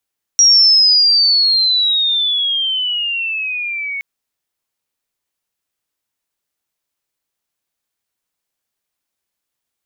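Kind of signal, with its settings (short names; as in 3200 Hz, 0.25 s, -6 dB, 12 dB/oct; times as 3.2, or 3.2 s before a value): chirp logarithmic 5700 Hz -> 2200 Hz -5.5 dBFS -> -20.5 dBFS 3.62 s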